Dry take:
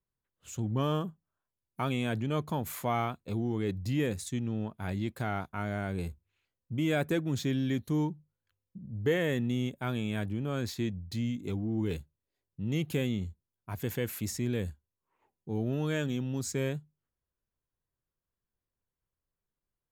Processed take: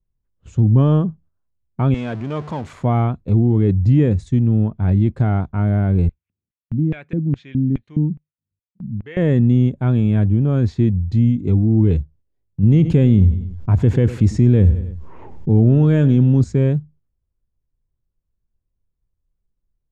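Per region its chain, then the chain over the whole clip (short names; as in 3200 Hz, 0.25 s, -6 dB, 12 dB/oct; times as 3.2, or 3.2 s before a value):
1.94–2.73 zero-crossing step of -33 dBFS + HPF 820 Hz 6 dB/oct + high shelf 11000 Hz -10 dB
6.09–9.17 bell 130 Hz +3.5 dB 0.69 oct + LFO band-pass square 2.4 Hz 210–2400 Hz
12.63–16.44 feedback echo 97 ms, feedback 30%, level -19 dB + fast leveller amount 50%
whole clip: LPF 8200 Hz 24 dB/oct; tilt -4.5 dB/oct; gate -50 dBFS, range -8 dB; gain +6 dB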